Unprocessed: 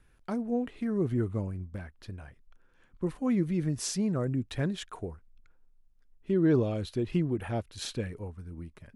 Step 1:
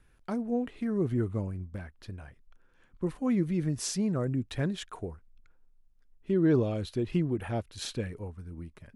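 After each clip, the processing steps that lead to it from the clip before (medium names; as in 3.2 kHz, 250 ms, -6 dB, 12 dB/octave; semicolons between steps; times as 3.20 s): no audible change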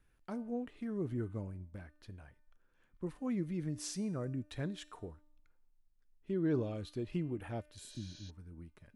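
feedback comb 300 Hz, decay 0.72 s, mix 60%; spectral replace 7.82–8.27 s, 350–6900 Hz before; trim -1 dB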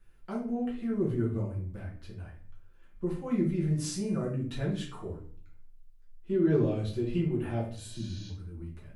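simulated room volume 45 m³, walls mixed, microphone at 1.1 m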